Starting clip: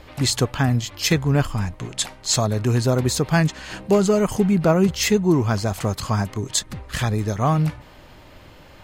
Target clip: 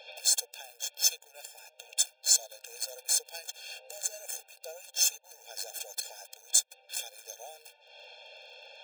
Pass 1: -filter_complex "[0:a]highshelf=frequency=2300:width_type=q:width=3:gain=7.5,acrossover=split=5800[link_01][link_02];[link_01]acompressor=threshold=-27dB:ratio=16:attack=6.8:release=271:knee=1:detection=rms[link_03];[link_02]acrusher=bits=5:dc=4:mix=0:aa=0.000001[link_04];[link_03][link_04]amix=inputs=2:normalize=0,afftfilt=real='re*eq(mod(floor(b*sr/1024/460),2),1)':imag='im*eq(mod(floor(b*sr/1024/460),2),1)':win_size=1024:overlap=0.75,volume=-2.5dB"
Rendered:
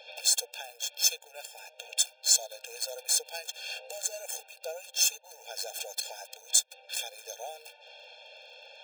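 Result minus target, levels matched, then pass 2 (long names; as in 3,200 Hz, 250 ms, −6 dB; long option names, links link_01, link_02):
downward compressor: peak gain reduction −6.5 dB
-filter_complex "[0:a]highshelf=frequency=2300:width_type=q:width=3:gain=7.5,acrossover=split=5800[link_01][link_02];[link_01]acompressor=threshold=-34dB:ratio=16:attack=6.8:release=271:knee=1:detection=rms[link_03];[link_02]acrusher=bits=5:dc=4:mix=0:aa=0.000001[link_04];[link_03][link_04]amix=inputs=2:normalize=0,afftfilt=real='re*eq(mod(floor(b*sr/1024/460),2),1)':imag='im*eq(mod(floor(b*sr/1024/460),2),1)':win_size=1024:overlap=0.75,volume=-2.5dB"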